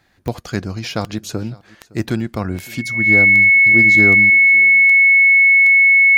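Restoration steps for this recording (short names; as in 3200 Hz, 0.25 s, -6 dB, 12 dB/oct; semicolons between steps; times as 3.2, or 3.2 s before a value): de-click; notch 2200 Hz, Q 30; inverse comb 0.562 s -23.5 dB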